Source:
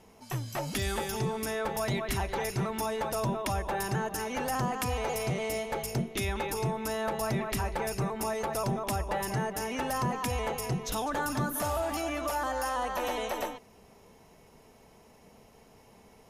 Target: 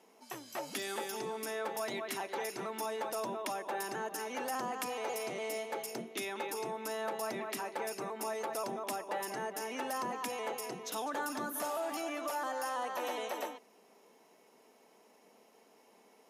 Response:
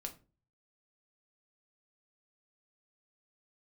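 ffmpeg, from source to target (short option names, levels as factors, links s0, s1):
-af "highpass=f=250:w=0.5412,highpass=f=250:w=1.3066,volume=0.562"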